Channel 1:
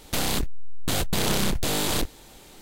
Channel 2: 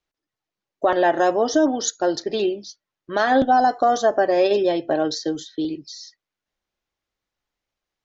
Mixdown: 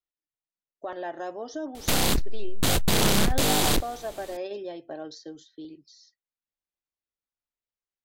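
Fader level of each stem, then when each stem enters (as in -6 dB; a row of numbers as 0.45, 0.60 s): +2.5, -16.5 dB; 1.75, 0.00 s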